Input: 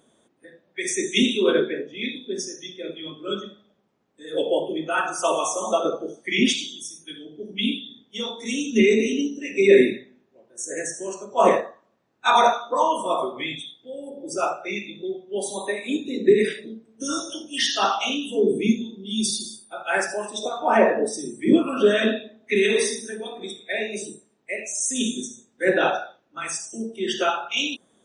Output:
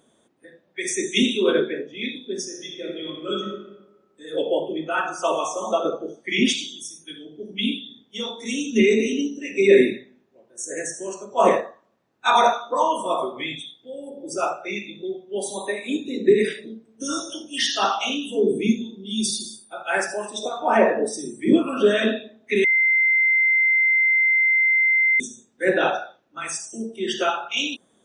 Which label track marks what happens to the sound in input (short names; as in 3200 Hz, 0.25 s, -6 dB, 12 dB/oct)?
2.480000	3.440000	reverb throw, RT60 1.1 s, DRR 1.5 dB
4.360000	6.290000	air absorption 75 m
22.640000	25.200000	bleep 2080 Hz -15 dBFS